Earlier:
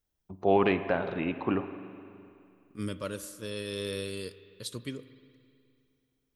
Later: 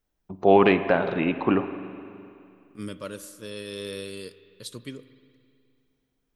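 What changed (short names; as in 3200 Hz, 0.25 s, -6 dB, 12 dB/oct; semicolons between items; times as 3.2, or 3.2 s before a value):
first voice +7.0 dB; master: add bell 84 Hz -9 dB 0.49 oct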